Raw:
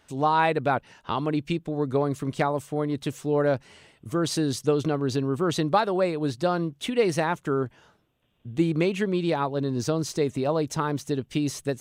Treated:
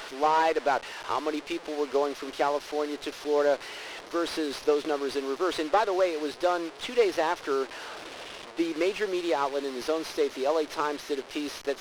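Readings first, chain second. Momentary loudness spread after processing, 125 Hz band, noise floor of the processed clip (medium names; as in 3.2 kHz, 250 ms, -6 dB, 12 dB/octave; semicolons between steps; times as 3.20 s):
9 LU, under -25 dB, -45 dBFS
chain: one-bit delta coder 32 kbps, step -32.5 dBFS; high-pass 350 Hz 24 dB/octave; sliding maximum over 3 samples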